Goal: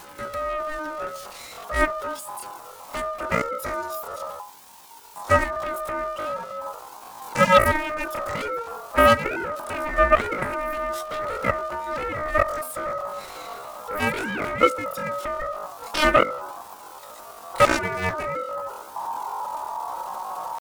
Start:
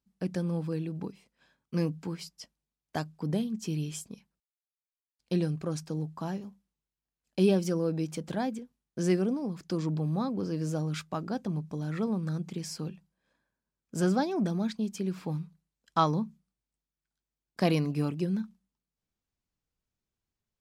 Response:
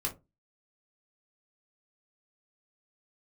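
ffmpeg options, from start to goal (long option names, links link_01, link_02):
-af "aeval=exprs='val(0)+0.5*0.0188*sgn(val(0))':channel_layout=same,bandreject=frequency=50:width_type=h:width=6,bandreject=frequency=100:width_type=h:width=6,bandreject=frequency=150:width_type=h:width=6,bandreject=frequency=200:width_type=h:width=6,bandreject=frequency=250:width_type=h:width=6,bandreject=frequency=300:width_type=h:width=6,bandreject=frequency=350:width_type=h:width=6,asubboost=boost=6:cutoff=220,flanger=delay=2.6:depth=8.1:regen=26:speed=0.42:shape=sinusoidal,asetrate=83250,aresample=44100,atempo=0.529732,aeval=exprs='0.316*(cos(1*acos(clip(val(0)/0.316,-1,1)))-cos(1*PI/2))+0.1*(cos(7*acos(clip(val(0)/0.316,-1,1)))-cos(7*PI/2))':channel_layout=same,aeval=exprs='val(0)*sin(2*PI*920*n/s)':channel_layout=same,volume=5.5dB"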